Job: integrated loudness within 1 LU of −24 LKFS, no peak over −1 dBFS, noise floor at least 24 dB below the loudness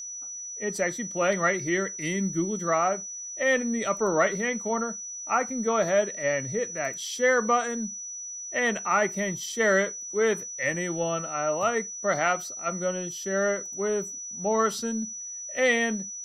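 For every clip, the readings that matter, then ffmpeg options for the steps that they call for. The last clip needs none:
interfering tone 5,900 Hz; level of the tone −35 dBFS; integrated loudness −27.0 LKFS; sample peak −10.5 dBFS; target loudness −24.0 LKFS
→ -af "bandreject=frequency=5900:width=30"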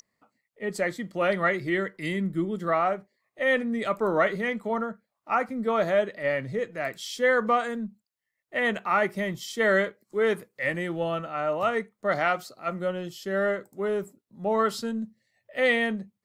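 interfering tone none found; integrated loudness −27.0 LKFS; sample peak −11.0 dBFS; target loudness −24.0 LKFS
→ -af "volume=3dB"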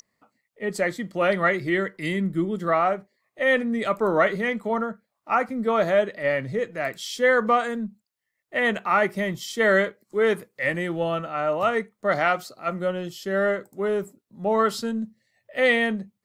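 integrated loudness −24.0 LKFS; sample peak −8.0 dBFS; background noise floor −80 dBFS

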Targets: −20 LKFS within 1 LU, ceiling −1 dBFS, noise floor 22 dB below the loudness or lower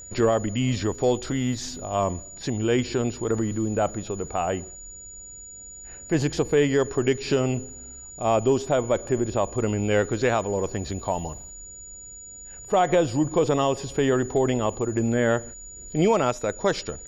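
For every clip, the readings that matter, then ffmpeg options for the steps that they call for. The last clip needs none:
interfering tone 6,900 Hz; level of the tone −40 dBFS; integrated loudness −24.5 LKFS; sample peak −10.5 dBFS; target loudness −20.0 LKFS
→ -af "bandreject=frequency=6900:width=30"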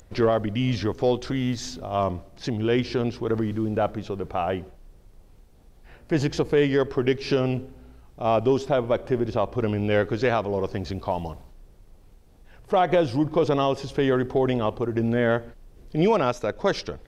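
interfering tone none found; integrated loudness −24.5 LKFS; sample peak −10.5 dBFS; target loudness −20.0 LKFS
→ -af "volume=4.5dB"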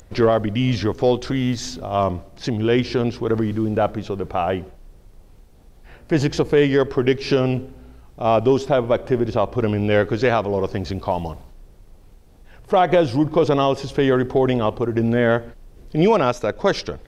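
integrated loudness −20.0 LKFS; sample peak −6.0 dBFS; background noise floor −47 dBFS

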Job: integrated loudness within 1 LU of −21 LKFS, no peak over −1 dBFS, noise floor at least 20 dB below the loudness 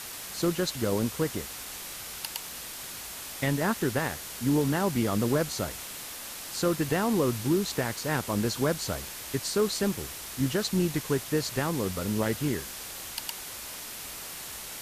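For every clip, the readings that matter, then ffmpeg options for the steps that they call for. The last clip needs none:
background noise floor −40 dBFS; target noise floor −50 dBFS; integrated loudness −30.0 LKFS; sample peak −15.5 dBFS; target loudness −21.0 LKFS
→ -af "afftdn=noise_reduction=10:noise_floor=-40"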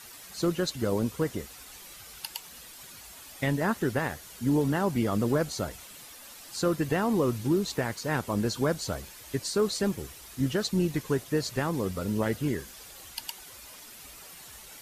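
background noise floor −48 dBFS; target noise floor −50 dBFS
→ -af "afftdn=noise_reduction=6:noise_floor=-48"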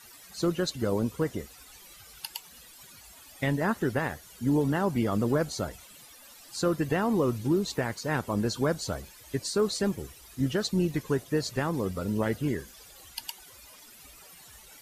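background noise floor −52 dBFS; integrated loudness −29.5 LKFS; sample peak −16.0 dBFS; target loudness −21.0 LKFS
→ -af "volume=8.5dB"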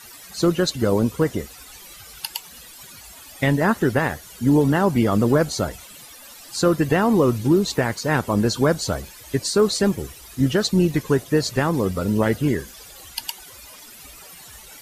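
integrated loudness −21.0 LKFS; sample peak −7.5 dBFS; background noise floor −43 dBFS

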